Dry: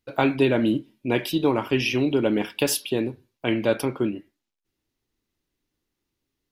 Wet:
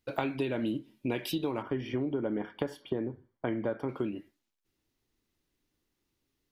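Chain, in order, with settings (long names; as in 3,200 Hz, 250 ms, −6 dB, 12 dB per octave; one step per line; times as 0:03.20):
0:01.62–0:03.89: Savitzky-Golay smoothing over 41 samples
downward compressor 6 to 1, threshold −29 dBFS, peak gain reduction 13.5 dB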